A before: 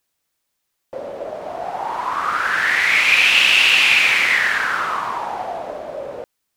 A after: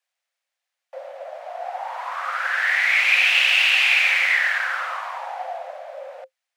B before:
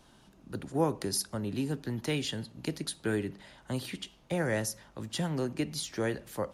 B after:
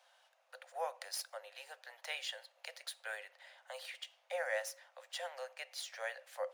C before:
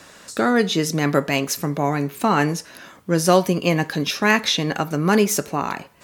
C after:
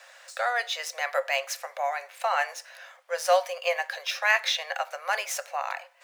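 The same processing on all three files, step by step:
running median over 3 samples
Chebyshev high-pass with heavy ripple 510 Hz, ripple 6 dB
level −2 dB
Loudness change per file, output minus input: −3.0, −9.5, −7.5 LU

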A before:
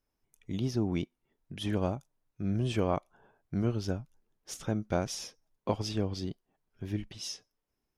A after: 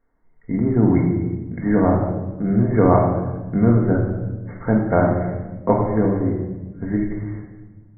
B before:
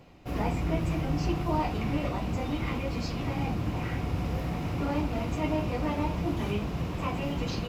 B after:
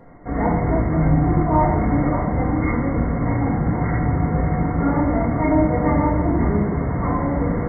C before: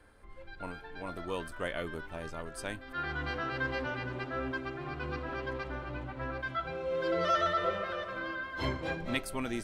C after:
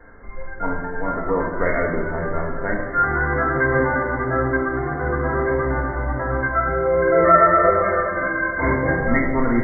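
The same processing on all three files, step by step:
linear-phase brick-wall low-pass 2,200 Hz
mains-hum notches 50/100/150/200/250 Hz
rectangular room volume 740 cubic metres, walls mixed, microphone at 1.7 metres
loudness normalisation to −20 LKFS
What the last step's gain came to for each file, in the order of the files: +11.5, +7.0, +12.5 decibels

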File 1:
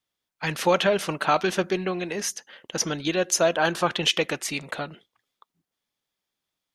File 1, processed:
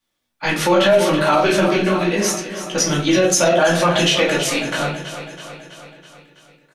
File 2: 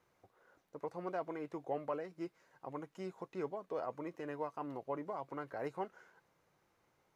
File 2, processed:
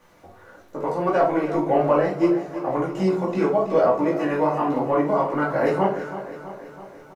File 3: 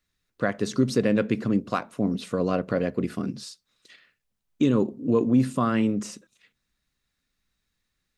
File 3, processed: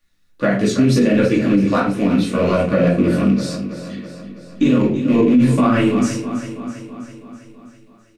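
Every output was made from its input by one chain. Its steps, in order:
loose part that buzzes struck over −27 dBFS, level −28 dBFS
multi-voice chorus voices 2, 0.79 Hz, delay 17 ms, depth 4.6 ms
on a send: repeating echo 327 ms, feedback 60%, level −12.5 dB
on the sum: rectangular room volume 260 cubic metres, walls furnished, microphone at 2.4 metres
brickwall limiter −14 dBFS
normalise the peak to −6 dBFS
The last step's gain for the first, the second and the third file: +8.0, +18.5, +8.0 decibels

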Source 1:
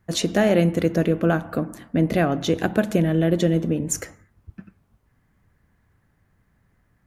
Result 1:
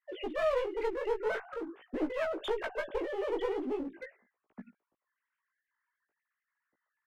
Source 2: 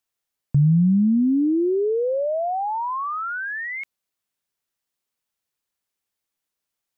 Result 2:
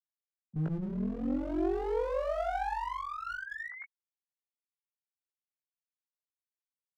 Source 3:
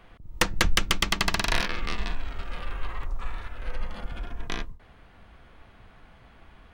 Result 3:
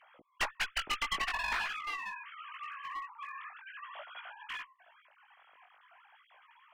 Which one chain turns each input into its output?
three sine waves on the formant tracks
asymmetric clip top −26 dBFS
chorus effect 0.45 Hz, delay 15.5 ms, depth 5.5 ms
level −7.5 dB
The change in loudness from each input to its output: −13.0, −13.0, −7.5 LU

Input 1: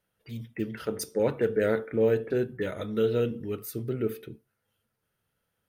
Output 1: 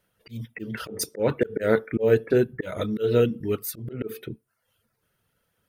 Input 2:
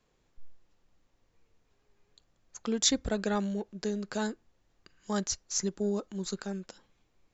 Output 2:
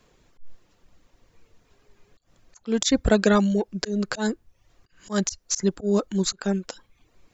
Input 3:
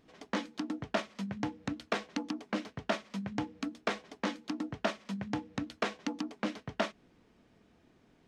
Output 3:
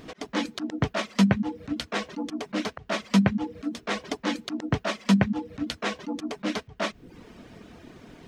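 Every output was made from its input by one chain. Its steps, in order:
notch filter 820 Hz, Q 20
volume swells 161 ms
reverb reduction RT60 0.54 s
normalise the peak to −6 dBFS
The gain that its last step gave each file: +7.5, +13.0, +19.0 decibels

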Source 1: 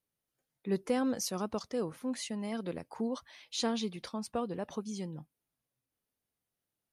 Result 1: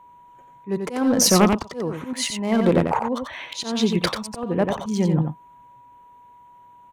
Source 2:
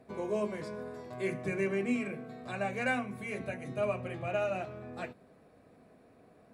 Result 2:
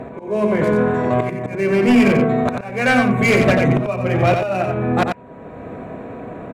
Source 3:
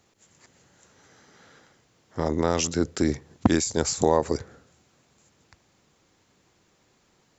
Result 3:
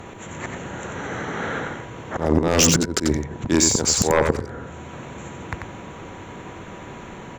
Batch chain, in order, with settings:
adaptive Wiener filter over 9 samples
in parallel at +2 dB: downward compressor 16 to 1, threshold −36 dBFS
on the sum: volume swells 640 ms
sine wavefolder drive 8 dB, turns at −18.5 dBFS
steady tone 970 Hz −55 dBFS
on a send: single-tap delay 90 ms −5.5 dB
on the sum: normalise the peak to −6 dBFS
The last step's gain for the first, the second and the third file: +8.5, +8.5, +9.0 decibels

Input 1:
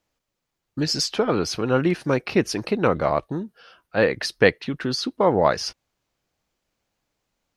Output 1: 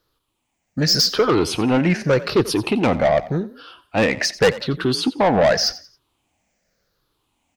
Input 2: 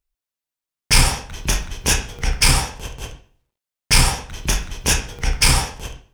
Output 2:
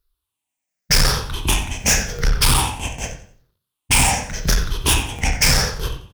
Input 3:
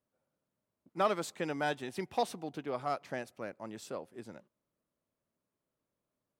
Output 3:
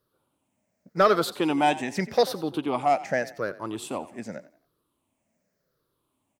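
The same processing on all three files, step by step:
rippled gain that drifts along the octave scale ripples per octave 0.6, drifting −0.86 Hz, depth 12 dB
soft clipping −16 dBFS
echo with shifted repeats 89 ms, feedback 32%, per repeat +38 Hz, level −17 dB
normalise the peak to −9 dBFS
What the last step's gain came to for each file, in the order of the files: +5.5, +4.5, +9.5 decibels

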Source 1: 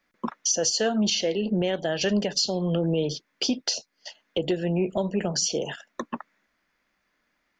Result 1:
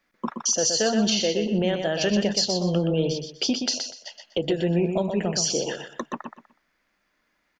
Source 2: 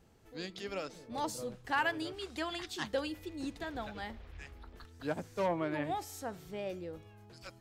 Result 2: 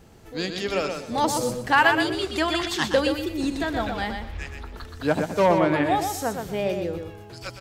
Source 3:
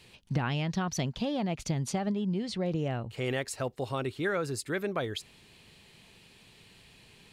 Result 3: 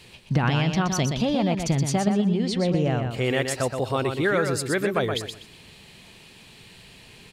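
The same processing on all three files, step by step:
repeating echo 123 ms, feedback 24%, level −6 dB
loudness normalisation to −24 LKFS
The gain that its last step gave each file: +1.0, +13.0, +7.5 decibels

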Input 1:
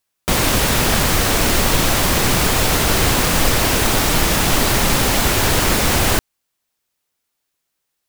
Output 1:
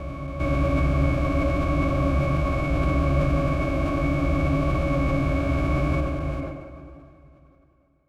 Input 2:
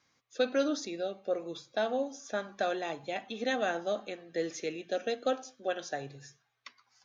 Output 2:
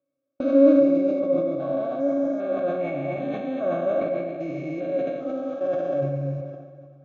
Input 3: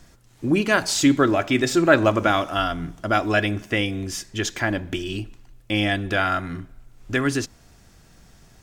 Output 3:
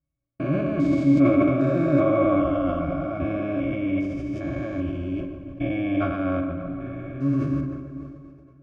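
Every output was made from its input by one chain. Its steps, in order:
spectrum averaged block by block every 400 ms
resonances in every octave C#, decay 0.11 s
hollow resonant body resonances 650/1,600 Hz, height 6 dB
on a send: tape delay 143 ms, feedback 78%, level −8.5 dB, low-pass 2,000 Hz
on the sum: noise gate −53 dBFS, range −30 dB
dense smooth reverb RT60 3.4 s, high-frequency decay 0.85×, DRR 11.5 dB
level that may fall only so fast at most 48 dB per second
loudness normalisation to −24 LKFS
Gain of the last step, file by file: +4.0, +20.0, +9.5 decibels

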